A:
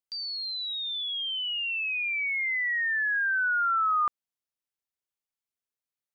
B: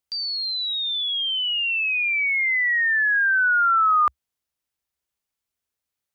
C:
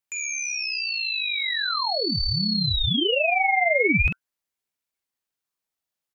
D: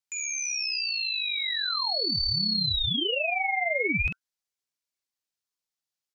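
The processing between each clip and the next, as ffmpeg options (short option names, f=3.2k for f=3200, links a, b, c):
-af "equalizer=f=66:t=o:w=0.82:g=11,volume=7dB"
-filter_complex "[0:a]asplit=2[a][b];[b]adelay=46,volume=-6dB[c];[a][c]amix=inputs=2:normalize=0,aeval=exprs='val(0)*sin(2*PI*1500*n/s+1500*0.55/0.42*sin(2*PI*0.42*n/s))':c=same"
-af "equalizer=f=5.3k:w=0.82:g=8,volume=-7.5dB"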